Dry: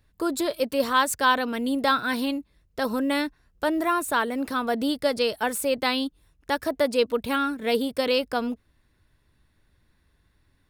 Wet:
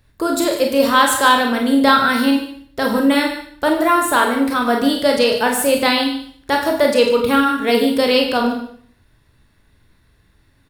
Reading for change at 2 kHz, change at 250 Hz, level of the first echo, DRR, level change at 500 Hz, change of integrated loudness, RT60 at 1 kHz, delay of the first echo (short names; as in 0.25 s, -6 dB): +9.0 dB, +10.0 dB, -12.5 dB, 1.0 dB, +9.0 dB, +9.5 dB, 0.60 s, 0.147 s